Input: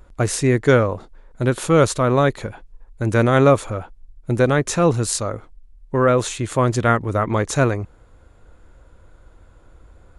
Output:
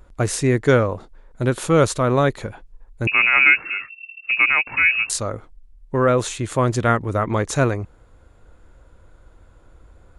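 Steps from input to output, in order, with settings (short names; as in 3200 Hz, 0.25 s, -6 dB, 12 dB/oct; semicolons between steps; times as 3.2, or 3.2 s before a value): 3.07–5.1 inverted band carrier 2700 Hz; gain -1 dB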